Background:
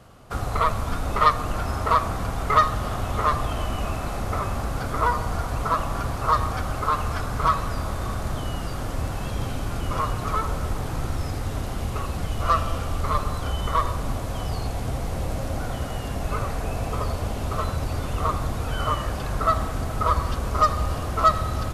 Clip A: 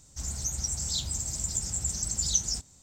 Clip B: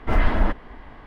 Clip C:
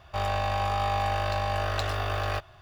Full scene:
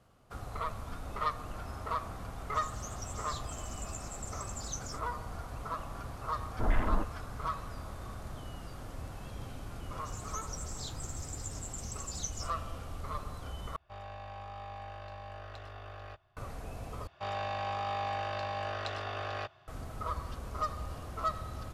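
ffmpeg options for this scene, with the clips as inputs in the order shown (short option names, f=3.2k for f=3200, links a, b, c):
-filter_complex "[1:a]asplit=2[a][b];[3:a]asplit=2[c][d];[0:a]volume=-15dB[e];[2:a]afwtdn=0.0447[f];[c]aemphasis=mode=reproduction:type=50kf[g];[d]highpass=120,lowpass=5.8k[h];[e]asplit=3[i][j][k];[i]atrim=end=13.764[l];[g]atrim=end=2.61,asetpts=PTS-STARTPTS,volume=-17dB[m];[j]atrim=start=16.366:end=17.074[n];[h]atrim=end=2.61,asetpts=PTS-STARTPTS,volume=-7dB[o];[k]atrim=start=19.676[p];[a]atrim=end=2.82,asetpts=PTS-STARTPTS,volume=-15dB,afade=t=in:d=0.004:c=hsin,afade=t=out:st=2.816:d=0.004:c=hsin,adelay=2380[q];[f]atrim=end=1.06,asetpts=PTS-STARTPTS,volume=-9.5dB,afade=t=in:d=0.004:c=hsin,afade=t=out:st=1.056:d=0.004:c=hsin,adelay=6520[r];[b]atrim=end=2.82,asetpts=PTS-STARTPTS,volume=-13dB,afade=t=in:d=0.004:c=hsin,afade=t=out:st=2.816:d=0.004:c=hsin,adelay=9890[s];[l][m]acrossfade=d=0.004:c1=hsin:c2=hsin[t];[t][n]acrossfade=d=0.004:c1=hsin:c2=hsin[u];[u][o]acrossfade=d=0.004:c1=hsin:c2=hsin[v];[v][p]acrossfade=d=0.004:c1=hsin:c2=hsin[w];[w][q][r][s]amix=inputs=4:normalize=0"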